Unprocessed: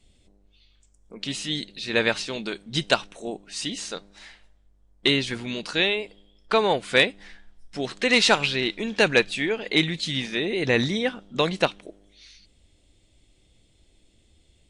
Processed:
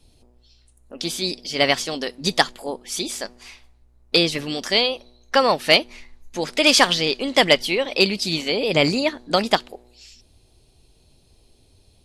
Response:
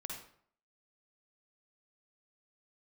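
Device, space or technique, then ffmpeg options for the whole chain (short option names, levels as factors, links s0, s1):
nightcore: -af "asetrate=53802,aresample=44100,volume=1.58"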